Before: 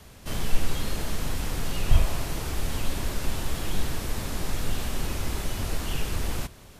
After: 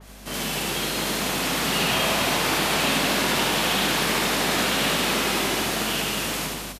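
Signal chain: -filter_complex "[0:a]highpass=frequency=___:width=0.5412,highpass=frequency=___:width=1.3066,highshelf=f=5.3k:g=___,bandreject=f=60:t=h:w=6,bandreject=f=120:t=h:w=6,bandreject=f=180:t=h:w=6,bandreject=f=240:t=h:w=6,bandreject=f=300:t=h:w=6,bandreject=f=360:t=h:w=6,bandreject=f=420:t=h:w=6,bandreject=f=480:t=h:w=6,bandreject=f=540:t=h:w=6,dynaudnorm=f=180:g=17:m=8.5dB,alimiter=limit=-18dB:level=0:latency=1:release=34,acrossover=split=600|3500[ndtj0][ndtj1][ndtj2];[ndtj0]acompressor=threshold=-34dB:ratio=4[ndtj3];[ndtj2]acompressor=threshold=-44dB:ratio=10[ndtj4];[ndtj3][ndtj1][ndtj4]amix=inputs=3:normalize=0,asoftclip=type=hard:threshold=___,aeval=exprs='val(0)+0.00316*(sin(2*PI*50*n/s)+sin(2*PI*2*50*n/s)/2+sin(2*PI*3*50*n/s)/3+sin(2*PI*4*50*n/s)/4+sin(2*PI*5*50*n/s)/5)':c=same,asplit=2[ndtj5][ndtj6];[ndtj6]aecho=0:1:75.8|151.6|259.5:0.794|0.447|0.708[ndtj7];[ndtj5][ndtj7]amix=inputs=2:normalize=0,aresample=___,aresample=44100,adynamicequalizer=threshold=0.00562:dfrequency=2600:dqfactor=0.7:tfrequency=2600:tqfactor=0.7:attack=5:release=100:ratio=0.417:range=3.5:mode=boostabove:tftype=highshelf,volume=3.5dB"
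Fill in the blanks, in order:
170, 170, 2, -23.5dB, 32000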